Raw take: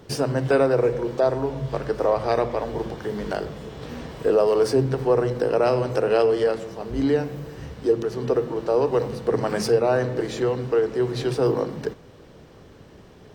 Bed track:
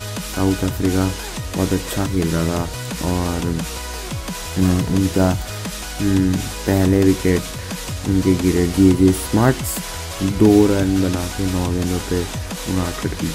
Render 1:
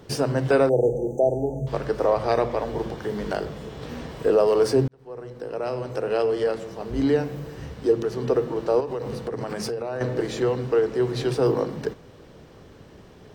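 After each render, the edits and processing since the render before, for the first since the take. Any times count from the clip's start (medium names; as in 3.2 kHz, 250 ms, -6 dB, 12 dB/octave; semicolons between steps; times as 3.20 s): 0.69–1.67 s: brick-wall FIR band-stop 890–5900 Hz; 4.88–6.96 s: fade in; 8.80–10.01 s: compression 10:1, threshold -25 dBFS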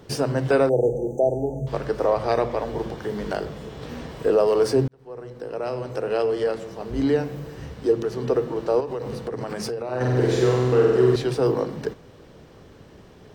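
9.84–11.16 s: flutter echo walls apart 8.2 m, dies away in 1.4 s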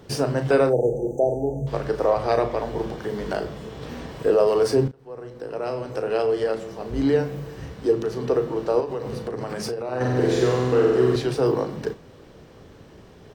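doubling 36 ms -10 dB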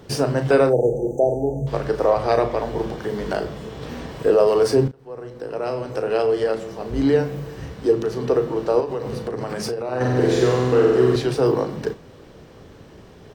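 trim +2.5 dB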